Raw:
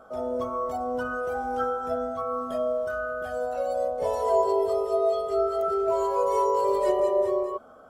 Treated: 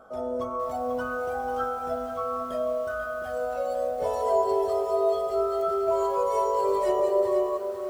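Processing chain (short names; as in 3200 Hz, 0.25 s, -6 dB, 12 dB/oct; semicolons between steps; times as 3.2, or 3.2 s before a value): lo-fi delay 0.492 s, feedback 35%, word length 8-bit, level -8 dB; gain -1 dB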